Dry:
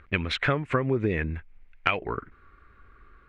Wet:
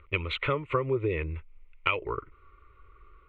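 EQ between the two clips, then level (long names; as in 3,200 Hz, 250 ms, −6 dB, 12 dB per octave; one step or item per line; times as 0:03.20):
low-pass filter 5,000 Hz 12 dB per octave
phaser with its sweep stopped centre 1,100 Hz, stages 8
0.0 dB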